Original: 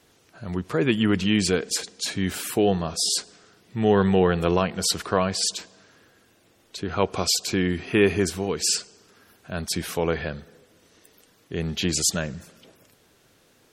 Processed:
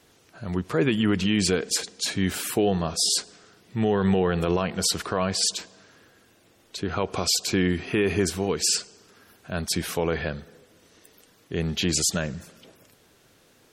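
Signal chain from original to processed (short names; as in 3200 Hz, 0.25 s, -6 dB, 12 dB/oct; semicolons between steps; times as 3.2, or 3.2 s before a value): limiter -13 dBFS, peak gain reduction 7.5 dB; gain +1 dB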